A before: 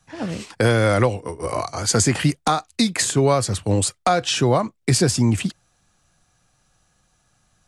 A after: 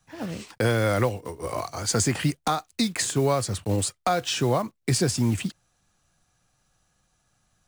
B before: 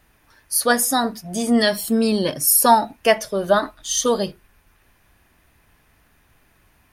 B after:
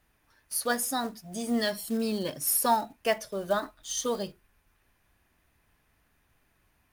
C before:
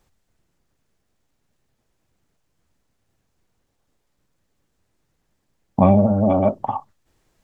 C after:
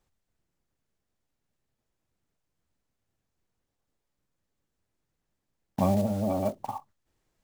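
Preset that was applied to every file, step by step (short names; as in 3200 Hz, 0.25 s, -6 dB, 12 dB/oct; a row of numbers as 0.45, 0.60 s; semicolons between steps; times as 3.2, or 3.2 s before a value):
block floating point 5-bit; normalise peaks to -12 dBFS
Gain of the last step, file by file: -5.5, -11.0, -11.0 dB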